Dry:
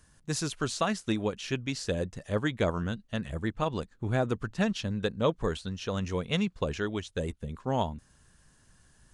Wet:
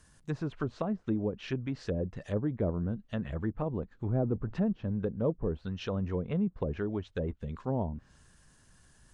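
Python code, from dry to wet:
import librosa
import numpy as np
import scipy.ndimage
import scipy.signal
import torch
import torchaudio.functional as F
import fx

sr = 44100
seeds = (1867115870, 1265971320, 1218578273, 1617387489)

y = fx.law_mismatch(x, sr, coded='mu', at=(4.15, 4.62))
y = fx.env_lowpass_down(y, sr, base_hz=520.0, full_db=-26.0)
y = fx.transient(y, sr, attack_db=-2, sustain_db=2)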